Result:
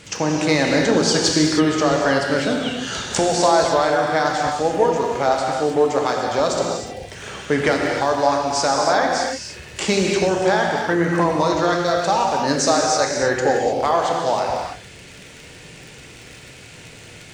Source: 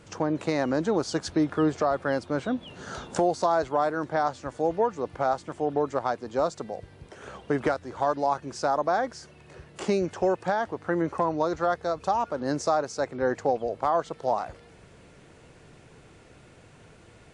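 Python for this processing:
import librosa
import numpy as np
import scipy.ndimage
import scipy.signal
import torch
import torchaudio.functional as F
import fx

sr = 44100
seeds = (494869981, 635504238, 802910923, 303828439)

p1 = fx.dmg_crackle(x, sr, seeds[0], per_s=55.0, level_db=-42.0)
p2 = fx.band_shelf(p1, sr, hz=4100.0, db=10.0, octaves=2.6)
p3 = np.clip(p2, -10.0 ** (-17.0 / 20.0), 10.0 ** (-17.0 / 20.0))
p4 = p2 + (p3 * librosa.db_to_amplitude(-8.5))
p5 = fx.rev_gated(p4, sr, seeds[1], gate_ms=340, shape='flat', drr_db=-0.5)
y = p5 * librosa.db_to_amplitude(2.0)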